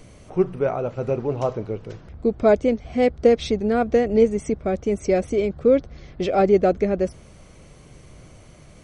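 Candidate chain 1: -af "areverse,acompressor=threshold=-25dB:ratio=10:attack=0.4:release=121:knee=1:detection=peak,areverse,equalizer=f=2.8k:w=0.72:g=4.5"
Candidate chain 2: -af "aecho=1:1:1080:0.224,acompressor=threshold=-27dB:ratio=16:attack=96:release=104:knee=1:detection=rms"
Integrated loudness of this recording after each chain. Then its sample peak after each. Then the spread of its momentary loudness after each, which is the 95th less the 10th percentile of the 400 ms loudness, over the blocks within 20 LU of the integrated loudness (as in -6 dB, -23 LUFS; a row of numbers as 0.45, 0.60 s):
-32.0, -29.0 LUFS; -18.5, -12.0 dBFS; 17, 8 LU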